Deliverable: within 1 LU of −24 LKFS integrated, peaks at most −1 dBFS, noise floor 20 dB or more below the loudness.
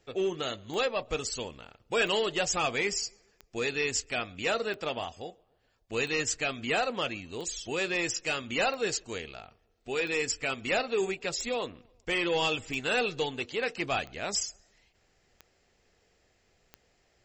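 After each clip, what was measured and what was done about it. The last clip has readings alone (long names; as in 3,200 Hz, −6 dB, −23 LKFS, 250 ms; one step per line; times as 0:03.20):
number of clicks 13; integrated loudness −30.5 LKFS; sample peak −16.0 dBFS; target loudness −24.0 LKFS
→ click removal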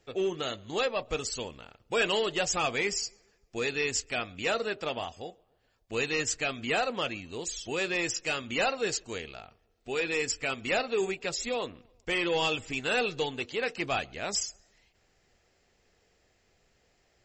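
number of clicks 0; integrated loudness −30.5 LKFS; sample peak −16.0 dBFS; target loudness −24.0 LKFS
→ level +6.5 dB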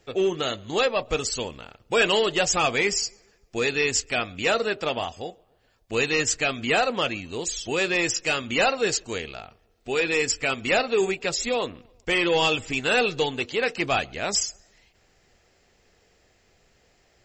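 integrated loudness −24.0 LKFS; sample peak −9.5 dBFS; background noise floor −63 dBFS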